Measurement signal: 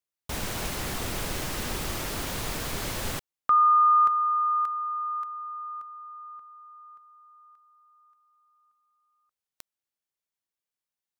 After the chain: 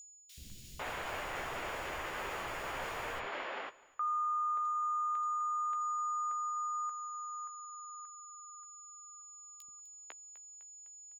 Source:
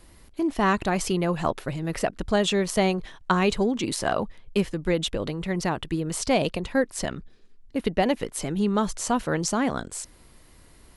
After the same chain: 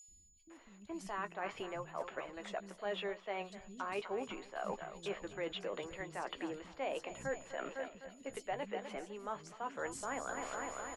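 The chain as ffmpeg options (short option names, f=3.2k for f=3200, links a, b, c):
-filter_complex "[0:a]adynamicequalizer=threshold=0.00224:dfrequency=3900:dqfactor=5.1:tfrequency=3900:tqfactor=5.1:attack=5:release=100:ratio=0.375:range=2.5:mode=cutabove:tftype=bell,asplit=2[a][b];[b]aecho=0:1:253|506|759|1012|1265|1518:0.141|0.0848|0.0509|0.0305|0.0183|0.011[c];[a][c]amix=inputs=2:normalize=0,aeval=exprs='val(0)+0.0126*sin(2*PI*6900*n/s)':c=same,acrossover=split=440 3300:gain=0.178 1 0.112[d][e][f];[d][e][f]amix=inputs=3:normalize=0,areverse,acompressor=threshold=-39dB:ratio=12:attack=0.73:release=535:knee=1:detection=rms,areverse,asplit=2[g][h];[h]adelay=15,volume=-10dB[i];[g][i]amix=inputs=2:normalize=0,acrossover=split=220|4300[j][k][l];[j]adelay=80[m];[k]adelay=500[n];[m][n][l]amix=inputs=3:normalize=0,volume=7dB"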